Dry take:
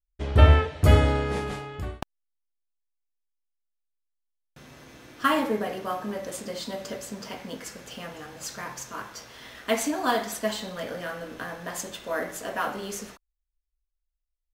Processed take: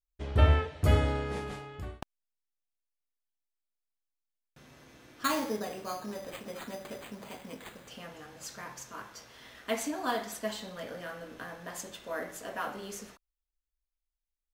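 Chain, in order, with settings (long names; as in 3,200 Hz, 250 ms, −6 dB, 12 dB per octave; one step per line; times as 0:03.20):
0:05.24–0:07.88: bad sample-rate conversion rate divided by 8×, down none, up hold
level −7 dB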